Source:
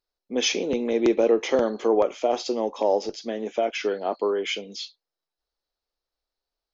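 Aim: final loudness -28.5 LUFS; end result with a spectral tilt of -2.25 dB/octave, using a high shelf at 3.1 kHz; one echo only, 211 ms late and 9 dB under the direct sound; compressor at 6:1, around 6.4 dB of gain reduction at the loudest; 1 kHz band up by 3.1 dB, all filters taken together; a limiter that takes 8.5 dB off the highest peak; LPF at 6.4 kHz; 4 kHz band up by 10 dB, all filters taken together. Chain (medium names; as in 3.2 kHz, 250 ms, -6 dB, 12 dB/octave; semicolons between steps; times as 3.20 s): low-pass 6.4 kHz; peaking EQ 1 kHz +3.5 dB; treble shelf 3.1 kHz +6.5 dB; peaking EQ 4 kHz +9 dB; compression 6:1, threshold -20 dBFS; peak limiter -16 dBFS; delay 211 ms -9 dB; trim -2 dB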